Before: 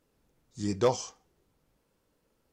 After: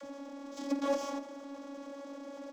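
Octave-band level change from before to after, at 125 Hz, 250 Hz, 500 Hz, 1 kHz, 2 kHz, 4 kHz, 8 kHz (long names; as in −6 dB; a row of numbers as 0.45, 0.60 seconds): below −30 dB, +0.5 dB, −5.0 dB, −3.0 dB, −0.5 dB, −5.5 dB, −8.5 dB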